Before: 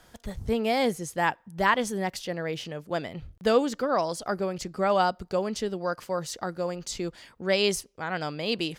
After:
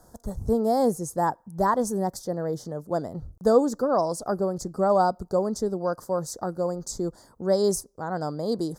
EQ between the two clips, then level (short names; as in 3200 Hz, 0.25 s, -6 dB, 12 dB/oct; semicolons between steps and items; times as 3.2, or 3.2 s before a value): Butterworth band-stop 2600 Hz, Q 0.52; +3.5 dB